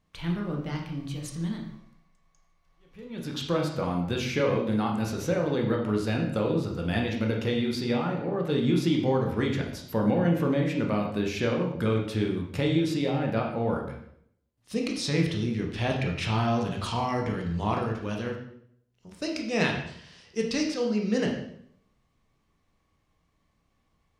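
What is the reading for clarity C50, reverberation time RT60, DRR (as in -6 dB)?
5.0 dB, 0.65 s, 0.0 dB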